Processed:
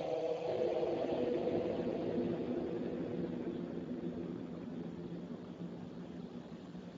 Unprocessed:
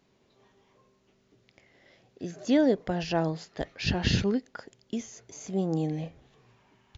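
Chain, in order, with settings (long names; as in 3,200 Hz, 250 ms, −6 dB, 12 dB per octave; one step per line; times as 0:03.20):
in parallel at 0 dB: downward compressor 5 to 1, threshold −41 dBFS, peak gain reduction 19.5 dB
on the sum: auto-filter high-pass sine 1.1 Hz 440–1,800 Hz
extreme stretch with random phases 31×, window 0.25 s, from 0:06.04
delay with pitch and tempo change per echo 478 ms, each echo −6 semitones, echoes 3
level −1.5 dB
Speex 8 kbit/s 16,000 Hz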